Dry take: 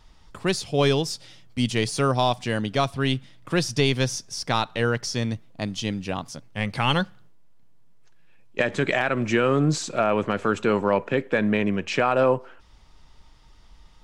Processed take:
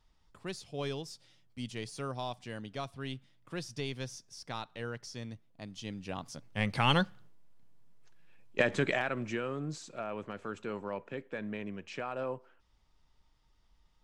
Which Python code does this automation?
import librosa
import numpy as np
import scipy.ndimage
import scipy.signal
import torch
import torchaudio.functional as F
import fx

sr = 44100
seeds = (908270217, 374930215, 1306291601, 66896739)

y = fx.gain(x, sr, db=fx.line((5.66, -16.5), (6.59, -4.5), (8.71, -4.5), (9.56, -17.0)))